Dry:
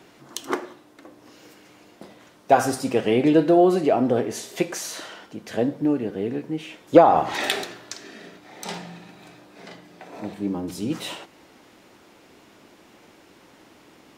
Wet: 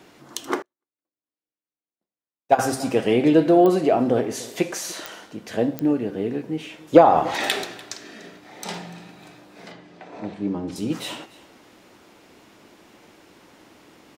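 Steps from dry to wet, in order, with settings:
hum removal 132.4 Hz, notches 28
0:09.71–0:10.76: high-frequency loss of the air 87 metres
single-tap delay 293 ms −20.5 dB
digital clicks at 0:03.66/0:05.06/0:05.79, −13 dBFS
0:00.62–0:02.59: expander for the loud parts 2.5 to 1, over −46 dBFS
level +1 dB

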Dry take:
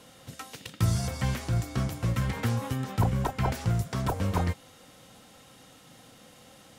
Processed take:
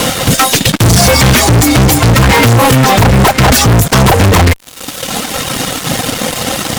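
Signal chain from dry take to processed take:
reverb reduction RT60 1.2 s
in parallel at −1.5 dB: downward compressor 5 to 1, threshold −36 dBFS, peak gain reduction 14.5 dB
on the sum: fuzz pedal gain 46 dB, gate −53 dBFS
level +8 dB

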